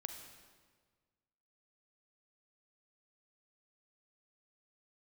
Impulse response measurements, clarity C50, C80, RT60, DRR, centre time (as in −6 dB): 6.0 dB, 7.5 dB, 1.6 s, 5.5 dB, 34 ms